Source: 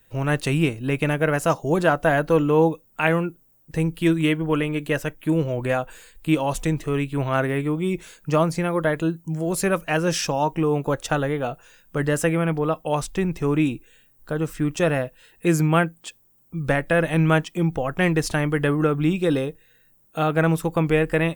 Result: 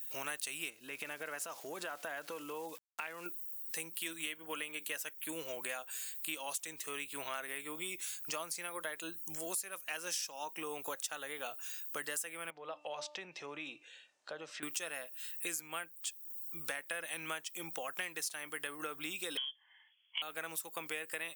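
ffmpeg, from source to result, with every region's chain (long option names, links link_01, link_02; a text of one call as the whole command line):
ffmpeg -i in.wav -filter_complex "[0:a]asettb=1/sr,asplit=3[link_01][link_02][link_03];[link_01]atrim=end=0.704[link_04];[link_02]atrim=start=0.7:end=3.26,asetpts=PTS-STARTPTS,afade=type=in:duration=0.004:curve=qsin,afade=type=out:start_time=2.556:duration=0.004:curve=qsin,aemphasis=mode=reproduction:type=75kf,acompressor=threshold=-26dB:ratio=6:attack=3.2:release=140:knee=1:detection=peak,aeval=exprs='val(0)*gte(abs(val(0)),0.00282)':channel_layout=same[link_05];[link_03]atrim=start=3.256[link_06];[link_04][link_05]acrossfade=duration=0.004:curve1=hsin:curve2=qsin[link_07];[link_07][link_06]acrossfade=duration=0.004:curve1=qsin:curve2=hsin,asettb=1/sr,asplit=3[link_08][link_09][link_10];[link_08]atrim=end=12.504[link_11];[link_09]atrim=start=12.5:end=14.63,asetpts=PTS-STARTPTS,afade=type=in:duration=0.004:curve=qsin,afade=type=out:start_time=2.126:duration=0.004:curve=qsin,acompressor=threshold=-40dB:ratio=2:attack=3.2:release=140:knee=1:detection=peak,highpass=140,equalizer=frequency=140:width_type=q:width=4:gain=8,equalizer=frequency=570:width_type=q:width=4:gain=10,equalizer=frequency=820:width_type=q:width=4:gain=5,lowpass=frequency=4900:width=0.5412,lowpass=frequency=4900:width=1.3066,bandreject=frequency=298.1:width_type=h:width=4,bandreject=frequency=596.2:width_type=h:width=4,bandreject=frequency=894.3:width_type=h:width=4,bandreject=frequency=1192.4:width_type=h:width=4,bandreject=frequency=1490.5:width_type=h:width=4,bandreject=frequency=1788.6:width_type=h:width=4,bandreject=frequency=2086.7:width_type=h:width=4,bandreject=frequency=2384.8:width_type=h:width=4,bandreject=frequency=2682.9:width_type=h:width=4,bandreject=frequency=2981:width_type=h:width=4[link_12];[link_10]atrim=start=14.626[link_13];[link_11][link_12]acrossfade=duration=0.004:curve1=hsin:curve2=qsin[link_14];[link_14][link_13]acrossfade=duration=0.004:curve1=qsin:curve2=hsin,asettb=1/sr,asplit=3[link_15][link_16][link_17];[link_15]atrim=end=19.374[link_18];[link_16]atrim=start=19.37:end=20.22,asetpts=PTS-STARTPTS,afade=type=in:duration=0.004:curve=qsin,afade=type=out:start_time=0.846:duration=0.004:curve=qsin,highpass=frequency=250:width=0.5412,highpass=frequency=250:width=1.3066,lowpass=frequency=3100:width_type=q:width=0.5098,lowpass=frequency=3100:width_type=q:width=0.6013,lowpass=frequency=3100:width_type=q:width=0.9,lowpass=frequency=3100:width_type=q:width=2.563,afreqshift=-3600[link_19];[link_17]atrim=start=20.216[link_20];[link_18][link_19]acrossfade=duration=0.004:curve1=hsin:curve2=qsin[link_21];[link_21][link_20]acrossfade=duration=0.004:curve1=qsin:curve2=hsin,highpass=220,aderivative,acompressor=threshold=-49dB:ratio=6,volume=11dB" out.wav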